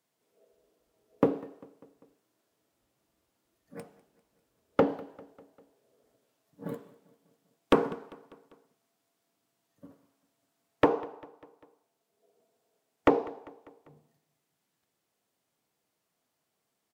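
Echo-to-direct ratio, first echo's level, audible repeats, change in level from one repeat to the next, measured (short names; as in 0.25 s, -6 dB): -20.5 dB, -22.0 dB, 3, -5.0 dB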